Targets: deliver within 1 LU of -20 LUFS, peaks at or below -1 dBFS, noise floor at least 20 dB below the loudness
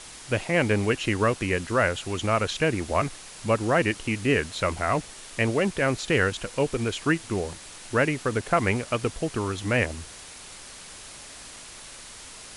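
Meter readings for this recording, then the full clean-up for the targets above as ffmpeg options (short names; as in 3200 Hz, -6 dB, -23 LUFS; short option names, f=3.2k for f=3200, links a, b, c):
noise floor -44 dBFS; noise floor target -46 dBFS; loudness -25.5 LUFS; peak -9.0 dBFS; loudness target -20.0 LUFS
-> -af "afftdn=nr=6:nf=-44"
-af "volume=5.5dB"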